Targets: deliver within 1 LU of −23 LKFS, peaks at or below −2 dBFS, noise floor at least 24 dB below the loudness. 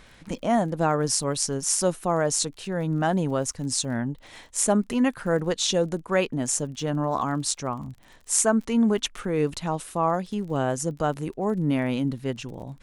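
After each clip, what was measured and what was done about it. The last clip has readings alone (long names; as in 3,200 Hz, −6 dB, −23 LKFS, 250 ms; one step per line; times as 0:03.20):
crackle rate 33 per second; integrated loudness −25.5 LKFS; sample peak −4.0 dBFS; target loudness −23.0 LKFS
→ click removal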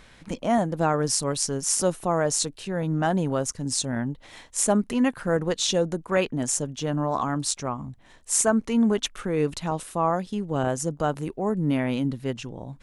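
crackle rate 0 per second; integrated loudness −25.5 LKFS; sample peak −5.5 dBFS; target loudness −23.0 LKFS
→ level +2.5 dB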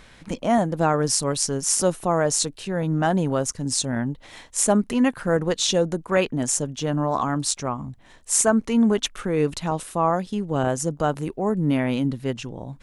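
integrated loudness −23.0 LKFS; sample peak −3.0 dBFS; background noise floor −50 dBFS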